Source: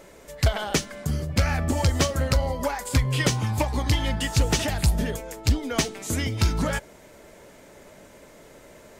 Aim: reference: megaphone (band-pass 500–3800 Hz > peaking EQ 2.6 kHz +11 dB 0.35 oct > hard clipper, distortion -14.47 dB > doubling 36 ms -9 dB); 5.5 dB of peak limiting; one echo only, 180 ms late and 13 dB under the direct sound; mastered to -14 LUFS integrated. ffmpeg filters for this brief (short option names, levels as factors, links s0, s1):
-filter_complex "[0:a]alimiter=limit=0.133:level=0:latency=1,highpass=500,lowpass=3800,equalizer=f=2600:t=o:w=0.35:g=11,aecho=1:1:180:0.224,asoftclip=type=hard:threshold=0.0596,asplit=2[s0][s1];[s1]adelay=36,volume=0.355[s2];[s0][s2]amix=inputs=2:normalize=0,volume=7.5"